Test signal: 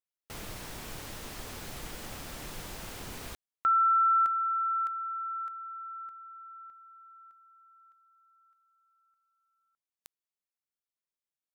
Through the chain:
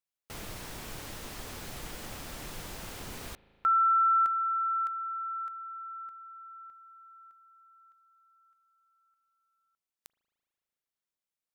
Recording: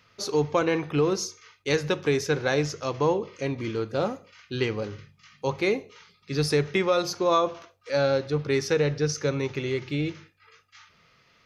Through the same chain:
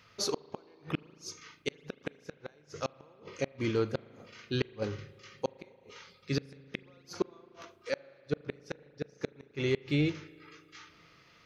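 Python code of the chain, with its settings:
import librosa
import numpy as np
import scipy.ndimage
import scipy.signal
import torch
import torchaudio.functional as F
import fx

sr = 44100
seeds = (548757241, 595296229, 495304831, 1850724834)

y = fx.gate_flip(x, sr, shuts_db=-17.0, range_db=-39)
y = fx.rev_spring(y, sr, rt60_s=2.9, pass_ms=(37,), chirp_ms=30, drr_db=19.0)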